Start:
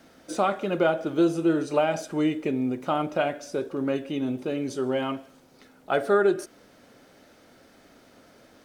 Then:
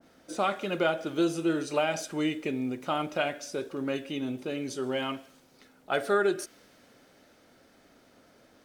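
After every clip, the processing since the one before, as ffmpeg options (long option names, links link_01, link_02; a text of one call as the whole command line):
ffmpeg -i in.wav -af "adynamicequalizer=threshold=0.01:dfrequency=1500:dqfactor=0.7:tfrequency=1500:tqfactor=0.7:attack=5:release=100:ratio=0.375:range=4:mode=boostabove:tftype=highshelf,volume=-5dB" out.wav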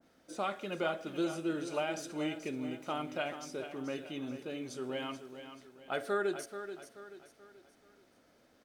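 ffmpeg -i in.wav -af "aecho=1:1:432|864|1296|1728:0.299|0.122|0.0502|0.0206,volume=-7.5dB" out.wav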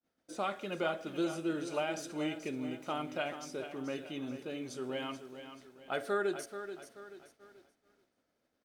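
ffmpeg -i in.wav -af "agate=range=-33dB:threshold=-56dB:ratio=3:detection=peak" out.wav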